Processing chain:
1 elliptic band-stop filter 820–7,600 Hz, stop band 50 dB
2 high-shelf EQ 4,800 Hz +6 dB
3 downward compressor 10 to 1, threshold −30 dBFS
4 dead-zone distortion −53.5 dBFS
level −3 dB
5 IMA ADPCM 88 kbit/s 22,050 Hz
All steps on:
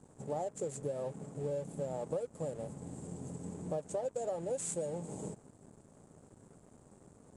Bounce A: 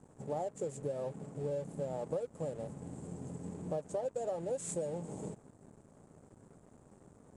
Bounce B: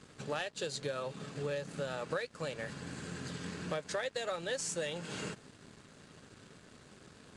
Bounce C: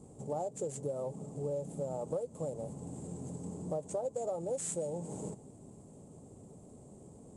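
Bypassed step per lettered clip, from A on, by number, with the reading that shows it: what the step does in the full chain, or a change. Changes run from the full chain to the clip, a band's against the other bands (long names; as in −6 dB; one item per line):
2, 8 kHz band −3.5 dB
1, 2 kHz band +20.0 dB
4, distortion level −20 dB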